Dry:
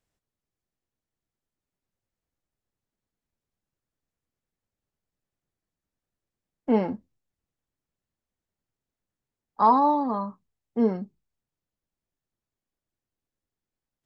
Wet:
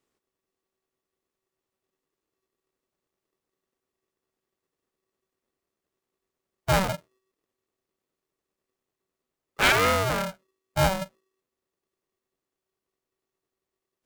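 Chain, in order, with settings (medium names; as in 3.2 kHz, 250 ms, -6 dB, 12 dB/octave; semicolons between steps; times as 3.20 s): self-modulated delay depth 0.47 ms; saturation -15 dBFS, distortion -16 dB; polarity switched at an audio rate 380 Hz; trim +2 dB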